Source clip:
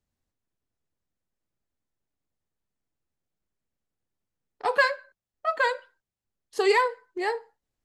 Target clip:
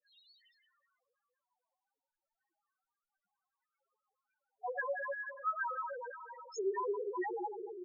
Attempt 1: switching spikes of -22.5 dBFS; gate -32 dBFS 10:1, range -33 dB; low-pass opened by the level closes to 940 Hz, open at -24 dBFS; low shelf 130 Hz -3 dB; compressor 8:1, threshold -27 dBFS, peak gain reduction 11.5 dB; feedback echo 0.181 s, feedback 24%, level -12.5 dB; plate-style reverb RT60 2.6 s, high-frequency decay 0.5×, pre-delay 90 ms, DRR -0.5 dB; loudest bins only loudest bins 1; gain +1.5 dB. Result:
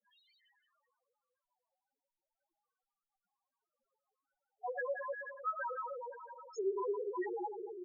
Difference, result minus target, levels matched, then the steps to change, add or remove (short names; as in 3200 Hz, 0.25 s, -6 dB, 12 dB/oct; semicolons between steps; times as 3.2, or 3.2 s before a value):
4000 Hz band -6.0 dB
add after compressor: high shelf 2200 Hz +7.5 dB